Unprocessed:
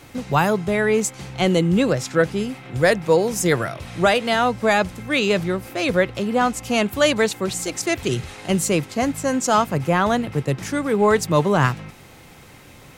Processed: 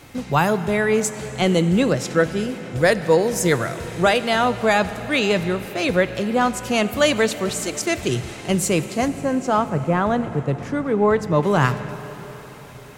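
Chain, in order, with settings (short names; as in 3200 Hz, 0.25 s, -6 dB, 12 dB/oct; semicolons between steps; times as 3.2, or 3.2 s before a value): 9.08–11.43 LPF 1300 Hz 6 dB/oct; plate-style reverb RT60 4.7 s, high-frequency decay 0.9×, DRR 12 dB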